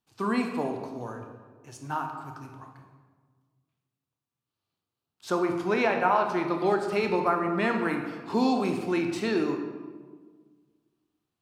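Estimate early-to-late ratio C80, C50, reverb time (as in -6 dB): 7.5 dB, 5.5 dB, 1.6 s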